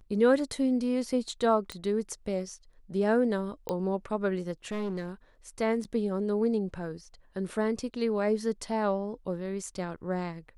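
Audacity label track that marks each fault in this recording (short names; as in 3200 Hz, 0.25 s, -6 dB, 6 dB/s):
1.720000	1.720000	pop -21 dBFS
3.690000	3.690000	pop -17 dBFS
4.710000	5.110000	clipped -29 dBFS
5.840000	5.850000	gap 7.7 ms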